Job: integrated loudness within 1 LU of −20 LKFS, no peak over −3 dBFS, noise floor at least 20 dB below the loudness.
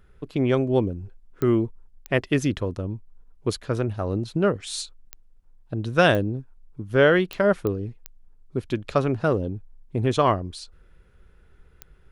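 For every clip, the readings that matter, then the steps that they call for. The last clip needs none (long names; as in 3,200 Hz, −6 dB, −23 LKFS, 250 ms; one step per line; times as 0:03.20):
number of clicks 8; integrated loudness −24.5 LKFS; sample peak −4.0 dBFS; target loudness −20.0 LKFS
→ click removal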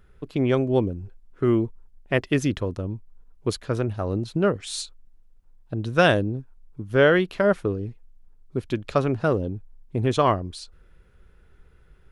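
number of clicks 0; integrated loudness −24.5 LKFS; sample peak −4.0 dBFS; target loudness −20.0 LKFS
→ level +4.5 dB
brickwall limiter −3 dBFS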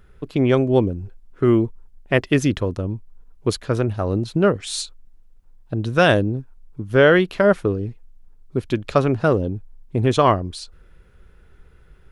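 integrated loudness −20.0 LKFS; sample peak −3.0 dBFS; background noise floor −50 dBFS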